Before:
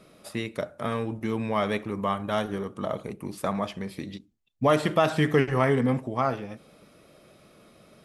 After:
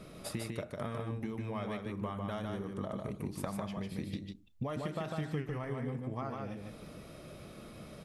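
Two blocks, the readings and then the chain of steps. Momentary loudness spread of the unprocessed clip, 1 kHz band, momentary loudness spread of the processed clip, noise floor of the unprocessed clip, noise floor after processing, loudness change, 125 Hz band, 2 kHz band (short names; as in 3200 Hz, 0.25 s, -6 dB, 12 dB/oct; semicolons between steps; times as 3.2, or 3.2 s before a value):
14 LU, -14.0 dB, 12 LU, -57 dBFS, -51 dBFS, -12.5 dB, -8.0 dB, -14.5 dB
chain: low shelf 140 Hz +11.5 dB; compressor 12:1, threshold -37 dBFS, peak gain reduction 23 dB; echo 0.15 s -3.5 dB; gain +1.5 dB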